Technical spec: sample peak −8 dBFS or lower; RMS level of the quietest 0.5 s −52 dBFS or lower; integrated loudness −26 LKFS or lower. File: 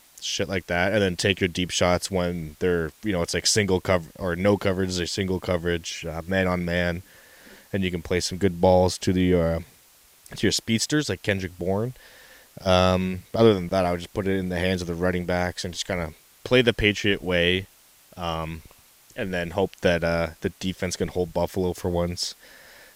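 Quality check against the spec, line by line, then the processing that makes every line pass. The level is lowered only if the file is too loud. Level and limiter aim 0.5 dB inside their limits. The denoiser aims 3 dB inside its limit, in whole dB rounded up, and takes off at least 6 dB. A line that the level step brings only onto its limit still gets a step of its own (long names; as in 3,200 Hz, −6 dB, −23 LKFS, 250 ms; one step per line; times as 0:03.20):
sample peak −4.0 dBFS: out of spec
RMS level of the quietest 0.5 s −55 dBFS: in spec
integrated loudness −24.5 LKFS: out of spec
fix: level −2 dB
brickwall limiter −8.5 dBFS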